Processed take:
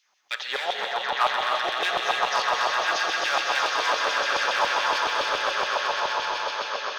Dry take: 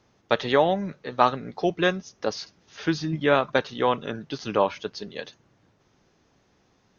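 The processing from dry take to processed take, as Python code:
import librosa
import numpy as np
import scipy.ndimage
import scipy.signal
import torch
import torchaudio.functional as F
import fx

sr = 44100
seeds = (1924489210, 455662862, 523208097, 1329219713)

p1 = fx.high_shelf(x, sr, hz=5400.0, db=10.0)
p2 = p1 + fx.echo_swell(p1, sr, ms=127, loudest=8, wet_db=-6.5, dry=0)
p3 = np.clip(10.0 ** (13.5 / 20.0) * p2, -1.0, 1.0) / 10.0 ** (13.5 / 20.0)
p4 = fx.filter_lfo_highpass(p3, sr, shape='saw_down', hz=7.1, low_hz=700.0, high_hz=3100.0, q=1.9)
p5 = fx.rev_gated(p4, sr, seeds[0], gate_ms=330, shape='rising', drr_db=2.0)
y = p5 * librosa.db_to_amplitude(-4.0)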